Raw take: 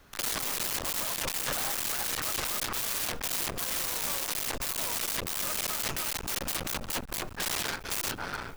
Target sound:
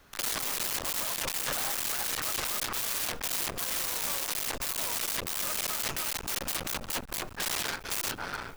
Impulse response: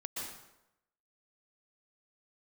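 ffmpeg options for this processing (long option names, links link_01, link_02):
-af "lowshelf=frequency=360:gain=-3"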